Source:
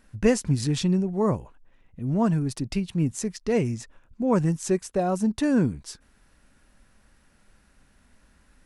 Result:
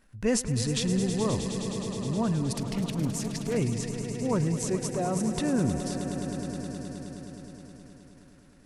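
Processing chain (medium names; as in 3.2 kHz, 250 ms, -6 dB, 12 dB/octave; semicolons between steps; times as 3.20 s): transient shaper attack -3 dB, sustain +8 dB; echo with a slow build-up 105 ms, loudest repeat 5, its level -12.5 dB; 2.56–3.57 s: loudspeaker Doppler distortion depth 0.43 ms; trim -5 dB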